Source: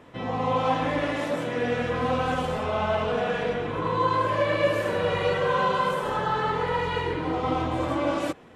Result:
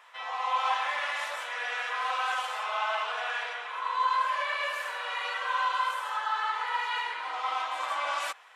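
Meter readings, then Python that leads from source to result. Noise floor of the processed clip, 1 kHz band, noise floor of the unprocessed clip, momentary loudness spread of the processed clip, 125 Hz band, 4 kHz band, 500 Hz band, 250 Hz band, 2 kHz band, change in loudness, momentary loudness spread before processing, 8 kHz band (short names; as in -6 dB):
-40 dBFS, -2.0 dB, -33 dBFS, 6 LU, under -40 dB, +0.5 dB, -17.0 dB, under -35 dB, +0.5 dB, -4.5 dB, 4 LU, n/a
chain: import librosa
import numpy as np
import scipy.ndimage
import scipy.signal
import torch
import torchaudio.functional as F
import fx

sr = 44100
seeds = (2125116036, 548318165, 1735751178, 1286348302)

y = scipy.signal.sosfilt(scipy.signal.butter(4, 920.0, 'highpass', fs=sr, output='sos'), x)
y = fx.rider(y, sr, range_db=3, speed_s=2.0)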